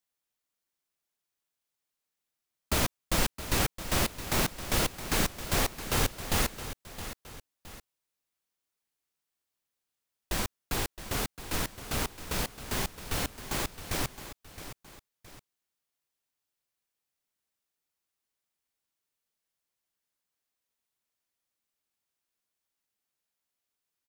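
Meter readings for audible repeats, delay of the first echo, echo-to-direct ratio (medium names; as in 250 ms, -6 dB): 2, 667 ms, -12.0 dB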